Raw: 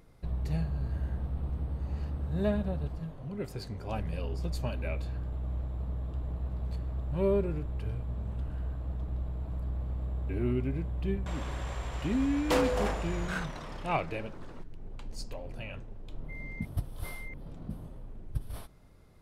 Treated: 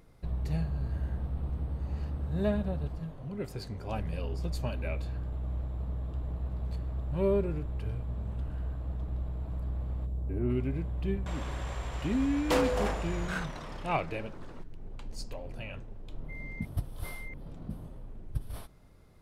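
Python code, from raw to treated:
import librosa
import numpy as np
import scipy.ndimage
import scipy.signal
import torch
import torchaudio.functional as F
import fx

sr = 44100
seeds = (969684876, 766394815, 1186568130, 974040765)

y = fx.peak_eq(x, sr, hz=fx.line((10.05, 1300.0), (10.49, 5200.0)), db=-14.5, octaves=2.3, at=(10.05, 10.49), fade=0.02)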